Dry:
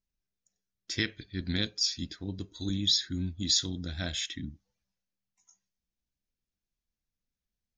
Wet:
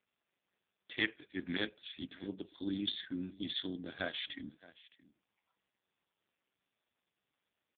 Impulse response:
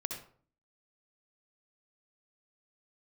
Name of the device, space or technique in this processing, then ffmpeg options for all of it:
satellite phone: -af "highpass=330,lowpass=3.4k,aecho=1:1:619:0.0944,volume=2.5dB" -ar 8000 -c:a libopencore_amrnb -b:a 5150

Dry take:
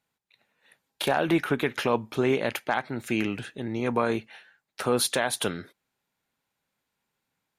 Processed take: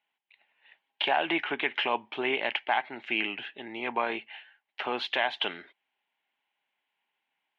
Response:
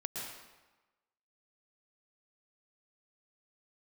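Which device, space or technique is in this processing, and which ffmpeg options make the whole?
phone earpiece: -af "highpass=480,equalizer=f=500:t=q:w=4:g=-9,equalizer=f=830:t=q:w=4:g=4,equalizer=f=1.3k:t=q:w=4:g=-7,equalizer=f=2.1k:t=q:w=4:g=4,equalizer=f=3k:t=q:w=4:g=10,lowpass=f=3.1k:w=0.5412,lowpass=f=3.1k:w=1.3066"

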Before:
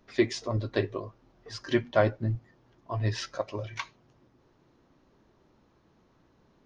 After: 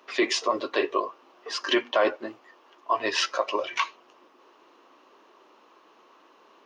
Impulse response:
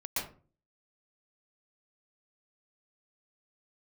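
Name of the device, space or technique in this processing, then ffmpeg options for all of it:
laptop speaker: -filter_complex "[0:a]highpass=f=340:w=0.5412,highpass=f=340:w=1.3066,equalizer=f=1.1k:t=o:w=0.49:g=9,equalizer=f=2.8k:t=o:w=0.42:g=9,alimiter=limit=-21dB:level=0:latency=1:release=19,asettb=1/sr,asplit=3[a][b][c];[a]atrim=end=2.164[d];[b]atrim=start=2.16:end=2.95,asetpts=PTS-STARTPTS,afade=t=in:d=0.004:c=qsin,afade=t=out:st=0.786:d=0.004:c=qsin,lowshelf=f=240:g=-7.5[e];[c]atrim=start=2.946[f];[d][e]acrossfade=d=0.004:c1=hsin:c2=qsin[g];[g][f]acrossfade=d=0.004:c1=qsin:c2=hsin,volume=8.5dB"

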